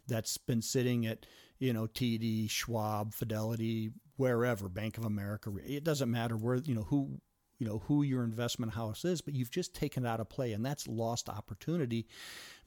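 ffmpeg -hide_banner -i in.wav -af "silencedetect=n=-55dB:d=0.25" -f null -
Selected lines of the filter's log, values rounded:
silence_start: 7.19
silence_end: 7.60 | silence_duration: 0.41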